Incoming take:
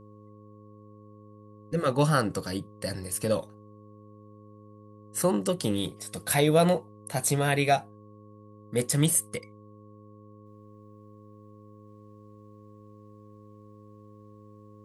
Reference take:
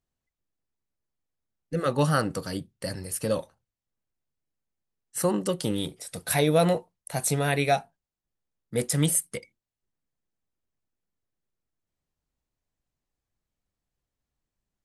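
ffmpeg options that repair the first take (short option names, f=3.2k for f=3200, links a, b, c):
-af "bandreject=f=105:t=h:w=4,bandreject=f=210:t=h:w=4,bandreject=f=315:t=h:w=4,bandreject=f=420:t=h:w=4,bandreject=f=525:t=h:w=4,bandreject=f=1.1k:w=30,asetnsamples=n=441:p=0,asendcmd='10.46 volume volume -8.5dB',volume=0dB"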